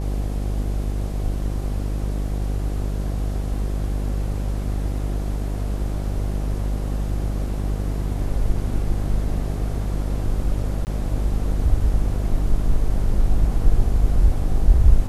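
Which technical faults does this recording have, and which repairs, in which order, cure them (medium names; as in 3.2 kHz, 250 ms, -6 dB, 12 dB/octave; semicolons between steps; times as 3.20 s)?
buzz 50 Hz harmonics 16 -24 dBFS
10.85–10.87 s: dropout 19 ms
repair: de-hum 50 Hz, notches 16; interpolate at 10.85 s, 19 ms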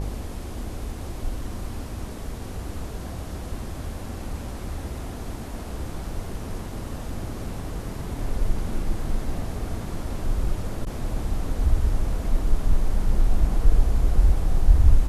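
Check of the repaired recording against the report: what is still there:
nothing left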